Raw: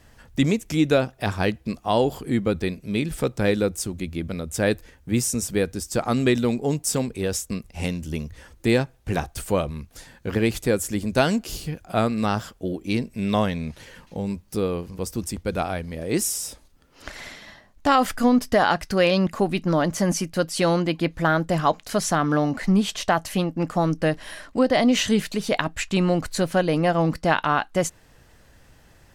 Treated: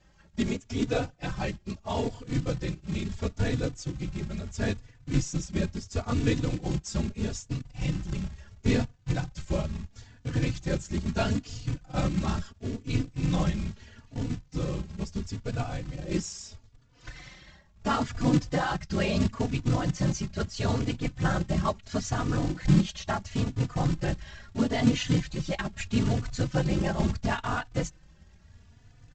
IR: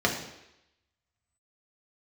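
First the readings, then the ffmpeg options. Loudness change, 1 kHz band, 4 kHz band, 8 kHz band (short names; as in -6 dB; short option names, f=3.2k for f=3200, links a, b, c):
-6.5 dB, -10.0 dB, -7.5 dB, -10.5 dB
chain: -filter_complex "[0:a]afftfilt=real='hypot(re,im)*cos(2*PI*random(0))':imag='hypot(re,im)*sin(2*PI*random(1))':win_size=512:overlap=0.75,asubboost=boost=3:cutoff=220,deesser=0.35,aresample=16000,acrusher=bits=4:mode=log:mix=0:aa=0.000001,aresample=44100,asplit=2[a][b];[b]adelay=3.4,afreqshift=0.75[c];[a][c]amix=inputs=2:normalize=1"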